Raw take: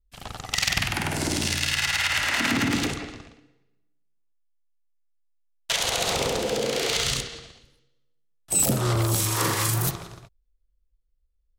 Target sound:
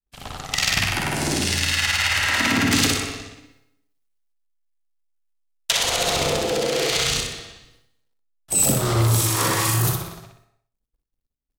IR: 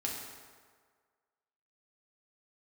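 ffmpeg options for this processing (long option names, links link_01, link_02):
-filter_complex "[0:a]asettb=1/sr,asplit=3[link_01][link_02][link_03];[link_01]atrim=end=2.714[link_04];[link_02]atrim=start=2.71:end=5.71,asetpts=PTS-STARTPTS,afade=type=in:duration=0.004:curve=qsin,afade=type=out:start_time=2.996:duration=0.004:curve=qsin,highshelf=frequency=3000:gain=11[link_05];[link_03]atrim=start=5.706[link_06];[link_04][link_05]acrossfade=duration=0.004:curve1=hsin:curve2=qsin[link_07];[link_07][link_06]acrossfade=duration=0.004:curve1=qsin:curve2=hsin,aecho=1:1:61|122|183|244|305:0.631|0.265|0.111|0.0467|0.0196,acrusher=bits=11:mix=0:aa=0.000001,agate=range=-33dB:threshold=-55dB:ratio=3:detection=peak,asplit=2[link_08][link_09];[1:a]atrim=start_sample=2205,afade=type=out:start_time=0.35:duration=0.01,atrim=end_sample=15876[link_10];[link_09][link_10]afir=irnorm=-1:irlink=0,volume=-11.5dB[link_11];[link_08][link_11]amix=inputs=2:normalize=0"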